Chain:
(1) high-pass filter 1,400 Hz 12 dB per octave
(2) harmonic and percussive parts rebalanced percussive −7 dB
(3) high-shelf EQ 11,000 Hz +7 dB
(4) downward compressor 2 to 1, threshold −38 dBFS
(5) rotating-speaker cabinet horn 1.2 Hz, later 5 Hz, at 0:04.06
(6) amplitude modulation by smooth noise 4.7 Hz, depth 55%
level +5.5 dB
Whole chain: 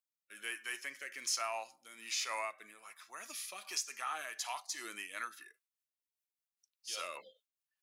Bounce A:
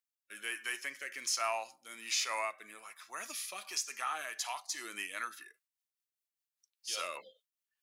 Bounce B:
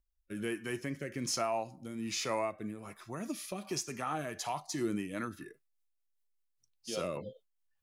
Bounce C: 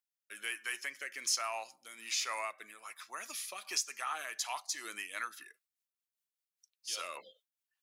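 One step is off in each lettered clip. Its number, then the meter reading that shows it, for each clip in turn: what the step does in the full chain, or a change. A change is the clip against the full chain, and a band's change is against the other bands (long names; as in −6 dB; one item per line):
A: 6, change in integrated loudness +2.5 LU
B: 1, 250 Hz band +24.0 dB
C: 2, 250 Hz band −2.5 dB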